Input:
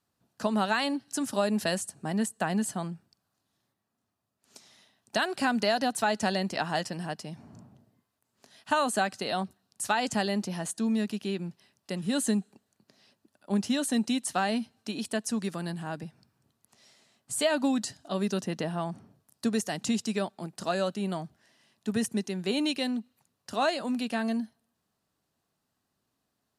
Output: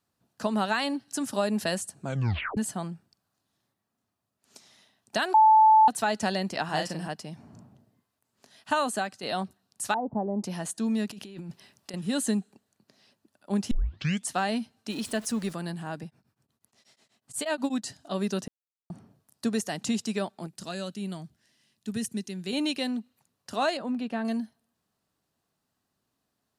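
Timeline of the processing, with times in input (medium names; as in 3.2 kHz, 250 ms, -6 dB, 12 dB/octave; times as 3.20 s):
2.00 s: tape stop 0.57 s
5.34–5.88 s: bleep 873 Hz -13.5 dBFS
6.65–7.08 s: doubling 38 ms -4 dB
8.80–9.23 s: fade out, to -8 dB
9.94–10.44 s: elliptic low-pass 950 Hz, stop band 70 dB
11.10–11.94 s: compressor with a negative ratio -41 dBFS
13.71 s: tape start 0.57 s
14.90–15.53 s: jump at every zero crossing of -41.5 dBFS
16.05–17.86 s: tremolo of two beating tones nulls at 8.2 Hz
18.48–18.90 s: mute
20.47–22.53 s: peaking EQ 810 Hz -10.5 dB 2.5 oct
23.77–24.25 s: low-pass 1.4 kHz 6 dB/octave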